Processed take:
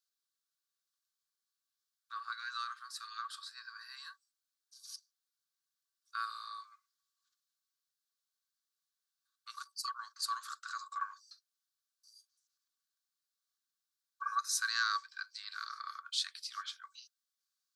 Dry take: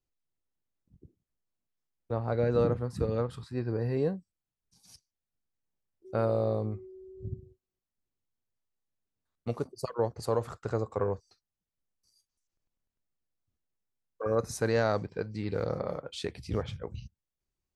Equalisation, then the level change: rippled Chebyshev high-pass 1.1 kHz, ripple 9 dB; peaking EQ 2.2 kHz -11 dB 1.3 oct; +13.0 dB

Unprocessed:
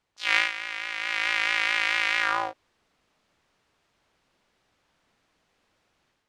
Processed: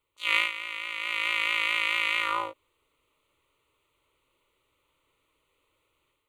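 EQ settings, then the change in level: peaking EQ 260 Hz +5 dB 0.44 oct; treble shelf 8.7 kHz +9.5 dB; static phaser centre 1.1 kHz, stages 8; 0.0 dB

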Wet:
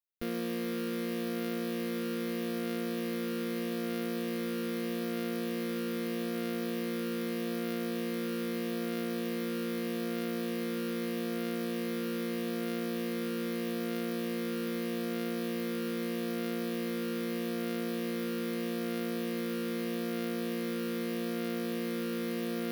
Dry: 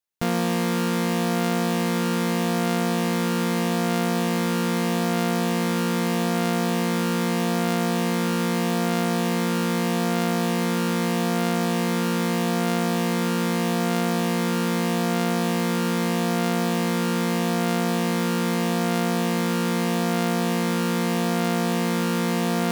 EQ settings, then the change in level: peaking EQ 2.6 kHz -3.5 dB 2.4 oct; peaking EQ 7.4 kHz -14.5 dB 0.71 oct; static phaser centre 350 Hz, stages 4; -6.5 dB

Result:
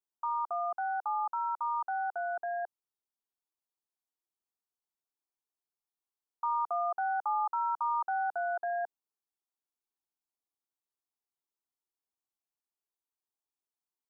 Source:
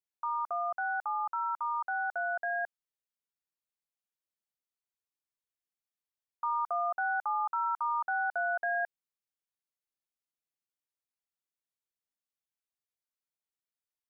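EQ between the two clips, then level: peaking EQ 560 Hz +9 dB 1.8 oct; static phaser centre 550 Hz, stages 6; -3.5 dB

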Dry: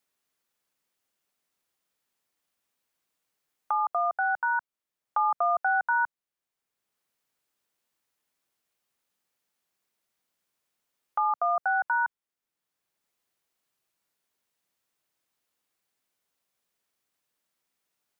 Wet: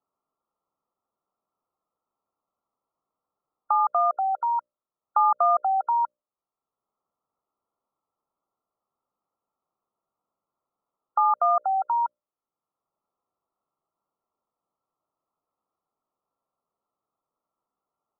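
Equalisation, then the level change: brick-wall FIR low-pass 1.4 kHz; bass shelf 440 Hz -6.5 dB; hum notches 60/120/180/240/300/360/420/480/540/600 Hz; +6.0 dB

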